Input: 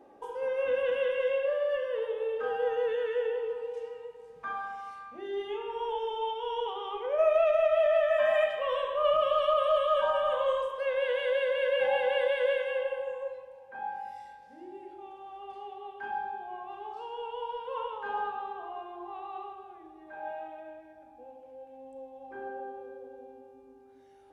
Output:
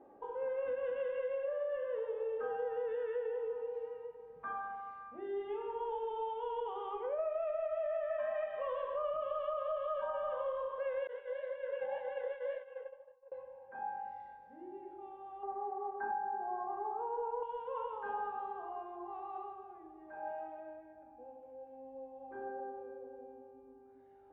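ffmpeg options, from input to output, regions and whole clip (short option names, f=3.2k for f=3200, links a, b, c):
-filter_complex "[0:a]asettb=1/sr,asplit=3[a][b][c];[a]atrim=end=11.074[d];[b]atrim=start=11.07:end=13.32,asetpts=PTS-STARTPTS,afade=t=in:d=0.004:c=qsin,afade=t=out:st=2.246:d=0.004:c=qsin,bandreject=f=2.5k:w=12,agate=range=-33dB:threshold=-24dB:ratio=3:release=100:detection=peak,flanger=delay=6.5:depth=7.5:regen=-49:speed=1.9:shape=sinusoidal[e];[c]atrim=start=13.316[f];[d][e]acrossfade=d=0.004:c1=hsin:c2=qsin[g];[g][f]acrossfade=d=0.004:c1=qsin:c2=hsin,asettb=1/sr,asplit=3[h][i][j];[h]atrim=end=15.434[k];[i]atrim=start=15.43:end=17.43,asetpts=PTS-STARTPTS,afade=t=in:d=0.004:c=qsin,afade=t=out:st=1.996:d=0.004:c=qsin,asuperstop=centerf=3500:order=4:qfactor=0.64,acontrast=89,equalizer=f=92:t=o:w=1.1:g=-13.5[l];[j]atrim=start=17.426[m];[k][l]acrossfade=d=0.004:c1=hsin:c2=qsin[n];[n][m]acrossfade=d=0.004:c1=qsin:c2=hsin,lowpass=1.5k,acompressor=threshold=-31dB:ratio=6,volume=-3dB"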